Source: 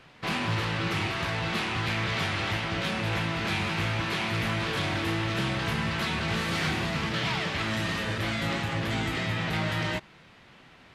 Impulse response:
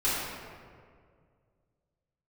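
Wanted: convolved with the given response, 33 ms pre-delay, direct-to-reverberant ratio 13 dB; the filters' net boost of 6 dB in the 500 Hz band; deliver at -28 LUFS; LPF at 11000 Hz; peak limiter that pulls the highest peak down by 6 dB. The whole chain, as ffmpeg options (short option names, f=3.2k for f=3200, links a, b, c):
-filter_complex "[0:a]lowpass=11k,equalizer=f=500:t=o:g=8,alimiter=limit=-23dB:level=0:latency=1,asplit=2[a][b];[1:a]atrim=start_sample=2205,adelay=33[c];[b][c]afir=irnorm=-1:irlink=0,volume=-24.5dB[d];[a][d]amix=inputs=2:normalize=0,volume=2.5dB"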